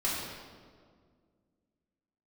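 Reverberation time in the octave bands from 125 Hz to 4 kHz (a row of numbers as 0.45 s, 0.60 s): 2.5 s, 2.6 s, 2.1 s, 1.7 s, 1.3 s, 1.2 s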